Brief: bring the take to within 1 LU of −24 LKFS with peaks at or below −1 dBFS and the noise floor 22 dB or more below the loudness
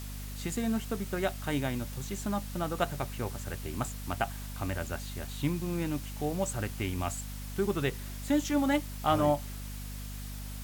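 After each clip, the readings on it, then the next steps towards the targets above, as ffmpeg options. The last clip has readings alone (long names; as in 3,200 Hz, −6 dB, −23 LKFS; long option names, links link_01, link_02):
mains hum 50 Hz; hum harmonics up to 250 Hz; level of the hum −38 dBFS; background noise floor −40 dBFS; target noise floor −55 dBFS; integrated loudness −33.0 LKFS; sample peak −14.0 dBFS; target loudness −24.0 LKFS
→ -af "bandreject=frequency=50:width_type=h:width=4,bandreject=frequency=100:width_type=h:width=4,bandreject=frequency=150:width_type=h:width=4,bandreject=frequency=200:width_type=h:width=4,bandreject=frequency=250:width_type=h:width=4"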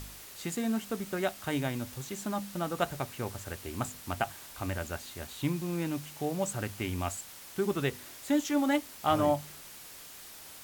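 mains hum none found; background noise floor −49 dBFS; target noise floor −56 dBFS
→ -af "afftdn=noise_reduction=7:noise_floor=-49"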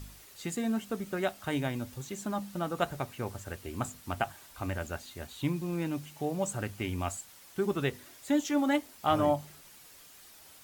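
background noise floor −54 dBFS; target noise floor −56 dBFS
→ -af "afftdn=noise_reduction=6:noise_floor=-54"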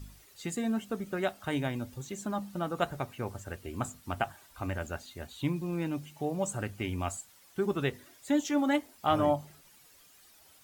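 background noise floor −59 dBFS; integrated loudness −33.5 LKFS; sample peak −13.5 dBFS; target loudness −24.0 LKFS
→ -af "volume=9.5dB"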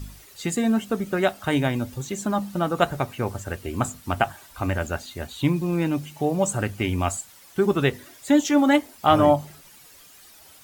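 integrated loudness −24.0 LKFS; sample peak −4.0 dBFS; background noise floor −50 dBFS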